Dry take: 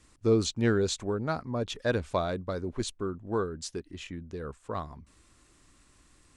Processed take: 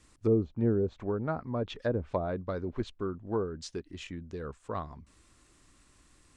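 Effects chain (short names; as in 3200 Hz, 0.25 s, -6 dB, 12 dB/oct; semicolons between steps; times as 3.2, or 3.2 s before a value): treble ducked by the level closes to 570 Hz, closed at -23 dBFS; gain -1 dB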